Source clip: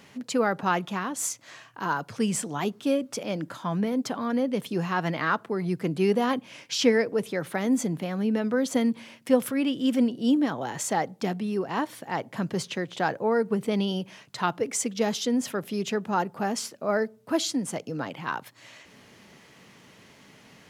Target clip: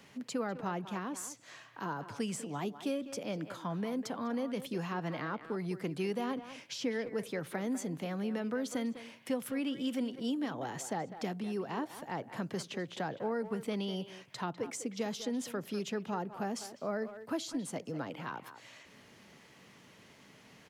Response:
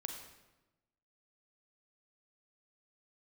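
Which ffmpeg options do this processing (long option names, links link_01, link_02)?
-filter_complex "[0:a]acrossover=split=290|720[link_01][link_02][link_03];[link_01]acompressor=threshold=-33dB:ratio=4[link_04];[link_02]acompressor=threshold=-33dB:ratio=4[link_05];[link_03]acompressor=threshold=-36dB:ratio=4[link_06];[link_04][link_05][link_06]amix=inputs=3:normalize=0,asplit=2[link_07][link_08];[link_08]adelay=200,highpass=300,lowpass=3400,asoftclip=type=hard:threshold=-25dB,volume=-11dB[link_09];[link_07][link_09]amix=inputs=2:normalize=0,volume=-5.5dB"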